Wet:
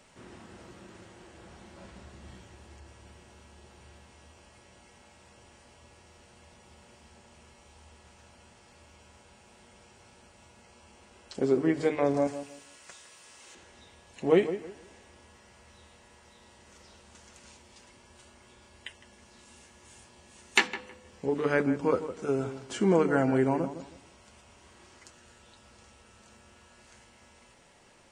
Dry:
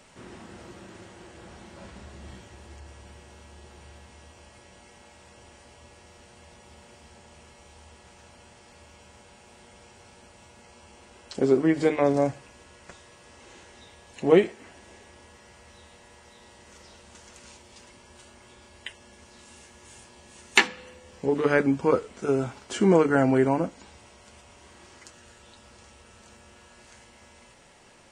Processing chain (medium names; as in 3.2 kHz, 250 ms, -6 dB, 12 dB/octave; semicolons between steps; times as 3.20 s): 12.27–13.55 s: tilt EQ +3 dB/octave; on a send: filtered feedback delay 159 ms, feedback 27%, low-pass 1.5 kHz, level -11 dB; on the sum: trim -4.5 dB